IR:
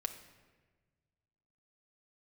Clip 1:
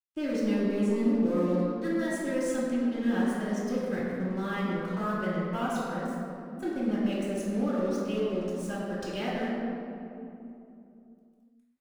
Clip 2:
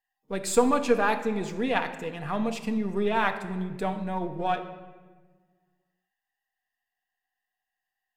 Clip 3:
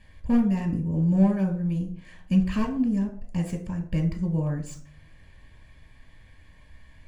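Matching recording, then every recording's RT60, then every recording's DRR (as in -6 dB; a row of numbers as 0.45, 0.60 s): 2; 2.9, 1.4, 0.50 s; -10.5, 5.0, 3.5 dB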